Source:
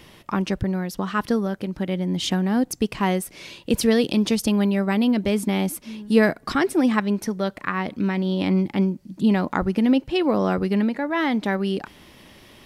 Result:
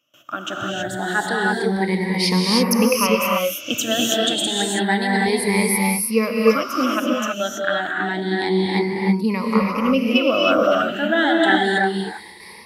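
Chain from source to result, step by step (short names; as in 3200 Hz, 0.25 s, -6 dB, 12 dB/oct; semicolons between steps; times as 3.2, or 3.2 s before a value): moving spectral ripple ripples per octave 0.88, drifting +0.29 Hz, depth 21 dB; gate with hold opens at -33 dBFS; HPF 630 Hz 6 dB/oct; AGC gain up to 9 dB; reverb, pre-delay 3 ms, DRR -2.5 dB; gain -5 dB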